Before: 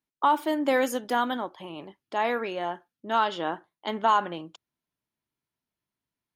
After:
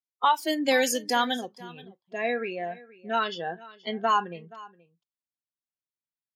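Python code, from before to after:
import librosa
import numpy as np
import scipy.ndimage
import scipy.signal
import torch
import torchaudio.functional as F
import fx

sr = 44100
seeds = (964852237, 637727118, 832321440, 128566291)

y = fx.high_shelf(x, sr, hz=2800.0, db=fx.steps((0.0, 3.0), (1.56, -6.0)))
y = fx.noise_reduce_blind(y, sr, reduce_db=20)
y = fx.peak_eq(y, sr, hz=4900.0, db=11.0, octaves=1.6)
y = y + 10.0 ** (-20.5 / 20.0) * np.pad(y, (int(476 * sr / 1000.0), 0))[:len(y)]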